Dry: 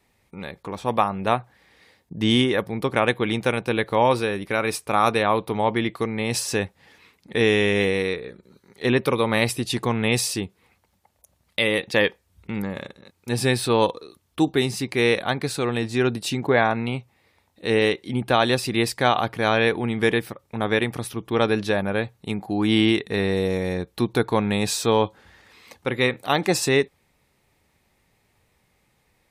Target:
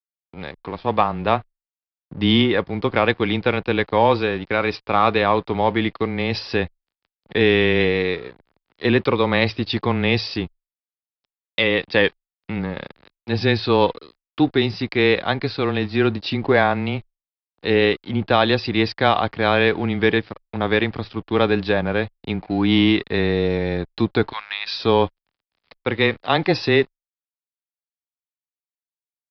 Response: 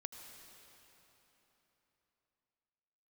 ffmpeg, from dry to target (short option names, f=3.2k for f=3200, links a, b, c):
-filter_complex "[0:a]asplit=3[a][b][c];[a]afade=t=out:st=24.31:d=0.02[d];[b]highpass=f=1.2k:w=0.5412,highpass=f=1.2k:w=1.3066,afade=t=in:st=24.31:d=0.02,afade=t=out:st=24.78:d=0.02[e];[c]afade=t=in:st=24.78:d=0.02[f];[d][e][f]amix=inputs=3:normalize=0,asplit=2[g][h];[h]acontrast=74,volume=-0.5dB[i];[g][i]amix=inputs=2:normalize=0,aeval=exprs='sgn(val(0))*max(abs(val(0))-0.0211,0)':c=same,afreqshift=-14,aresample=11025,aresample=44100,volume=-6dB"